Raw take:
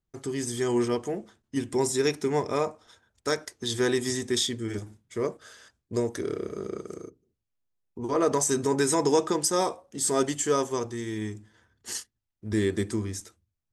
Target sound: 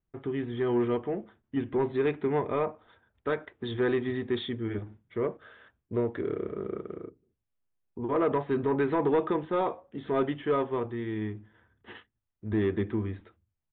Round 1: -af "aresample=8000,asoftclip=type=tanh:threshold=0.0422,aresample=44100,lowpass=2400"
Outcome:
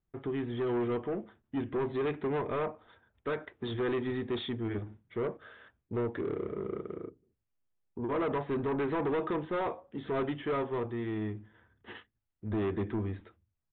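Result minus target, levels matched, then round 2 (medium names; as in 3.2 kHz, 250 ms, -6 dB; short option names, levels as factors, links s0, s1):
saturation: distortion +10 dB
-af "aresample=8000,asoftclip=type=tanh:threshold=0.126,aresample=44100,lowpass=2400"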